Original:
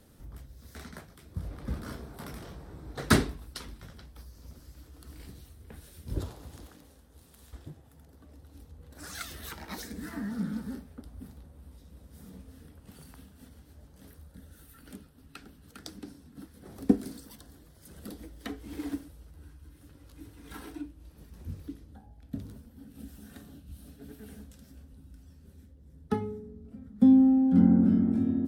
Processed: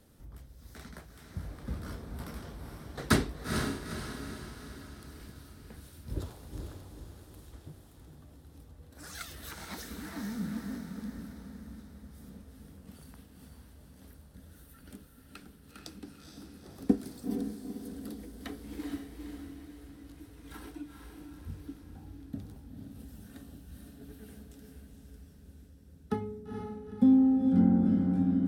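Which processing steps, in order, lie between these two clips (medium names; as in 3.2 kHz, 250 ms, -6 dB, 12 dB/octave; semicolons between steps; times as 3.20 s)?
echo that smears into a reverb 461 ms, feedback 51%, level -4.5 dB; trim -3 dB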